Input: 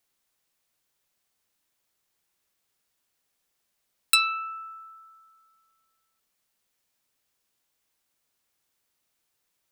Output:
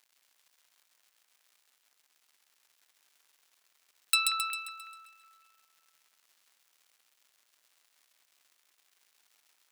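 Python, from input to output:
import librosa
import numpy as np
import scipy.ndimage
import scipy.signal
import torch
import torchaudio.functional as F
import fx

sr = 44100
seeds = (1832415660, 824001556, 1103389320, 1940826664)

y = fx.dmg_crackle(x, sr, seeds[0], per_s=180.0, level_db=-46.0)
y = fx.highpass(y, sr, hz=1400.0, slope=6)
y = fx.echo_split(y, sr, split_hz=2300.0, low_ms=184, high_ms=133, feedback_pct=52, wet_db=-3)
y = F.gain(torch.from_numpy(y), -5.0).numpy()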